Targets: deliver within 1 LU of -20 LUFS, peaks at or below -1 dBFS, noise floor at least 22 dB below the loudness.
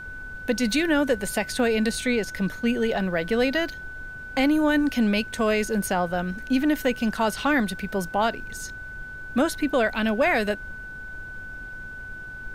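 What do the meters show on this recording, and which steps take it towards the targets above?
steady tone 1.5 kHz; tone level -36 dBFS; noise floor -38 dBFS; noise floor target -47 dBFS; loudness -24.5 LUFS; peak level -11.0 dBFS; loudness target -20.0 LUFS
-> band-stop 1.5 kHz, Q 30; noise print and reduce 9 dB; trim +4.5 dB

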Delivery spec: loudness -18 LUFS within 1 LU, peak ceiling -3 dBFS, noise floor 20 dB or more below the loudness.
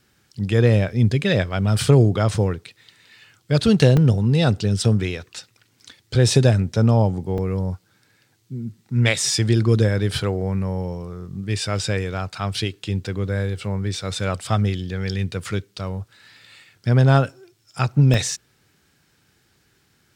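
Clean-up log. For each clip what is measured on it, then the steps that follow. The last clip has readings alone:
dropouts 3; longest dropout 2.5 ms; loudness -20.5 LUFS; peak level -2.0 dBFS; loudness target -18.0 LUFS
-> interpolate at 3.97/7.38/18.14 s, 2.5 ms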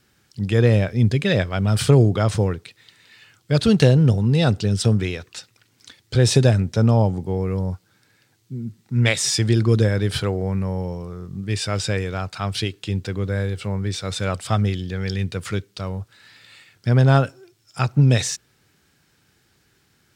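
dropouts 0; loudness -20.5 LUFS; peak level -2.0 dBFS; loudness target -18.0 LUFS
-> trim +2.5 dB; peak limiter -3 dBFS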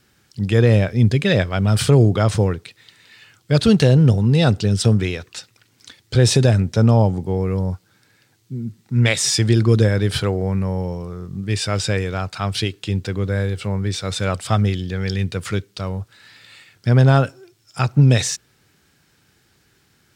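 loudness -18.5 LUFS; peak level -3.0 dBFS; noise floor -60 dBFS

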